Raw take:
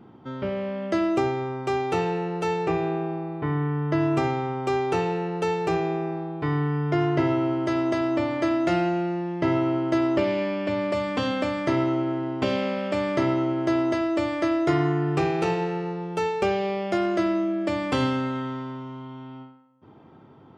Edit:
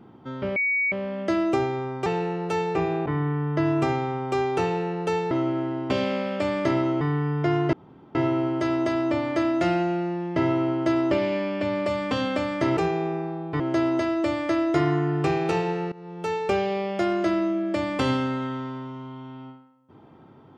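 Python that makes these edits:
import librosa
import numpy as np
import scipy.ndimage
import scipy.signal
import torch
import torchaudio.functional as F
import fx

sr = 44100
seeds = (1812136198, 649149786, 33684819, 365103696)

y = fx.edit(x, sr, fx.insert_tone(at_s=0.56, length_s=0.36, hz=2250.0, db=-20.5),
    fx.cut(start_s=1.7, length_s=0.28),
    fx.cut(start_s=2.98, length_s=0.43),
    fx.swap(start_s=5.66, length_s=0.83, other_s=11.83, other_length_s=1.7),
    fx.insert_room_tone(at_s=7.21, length_s=0.42),
    fx.fade_in_from(start_s=15.85, length_s=0.67, curve='qsin', floor_db=-19.5), tone=tone)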